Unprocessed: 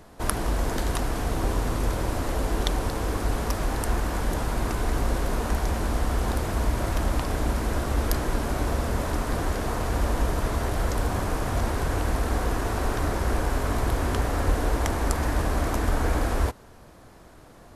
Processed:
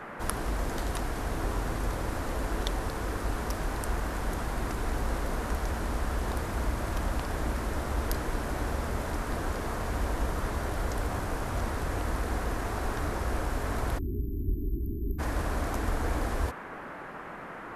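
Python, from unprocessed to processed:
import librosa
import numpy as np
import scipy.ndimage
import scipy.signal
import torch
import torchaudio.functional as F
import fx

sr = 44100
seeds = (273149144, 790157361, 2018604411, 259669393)

y = fx.dmg_noise_band(x, sr, seeds[0], low_hz=140.0, high_hz=1700.0, level_db=-36.0)
y = fx.spec_erase(y, sr, start_s=13.99, length_s=1.2, low_hz=410.0, high_hz=12000.0)
y = F.gain(torch.from_numpy(y), -6.0).numpy()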